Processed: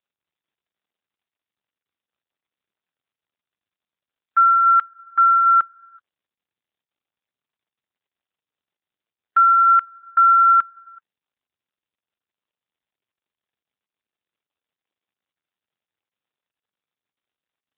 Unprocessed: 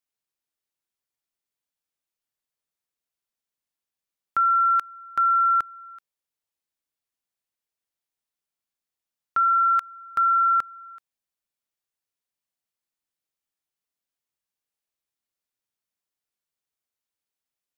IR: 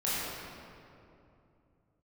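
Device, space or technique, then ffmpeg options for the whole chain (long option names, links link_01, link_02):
mobile call with aggressive noise cancelling: -af "highpass=150,afftdn=noise_reduction=13:noise_floor=-43,volume=8dB" -ar 8000 -c:a libopencore_amrnb -b:a 7950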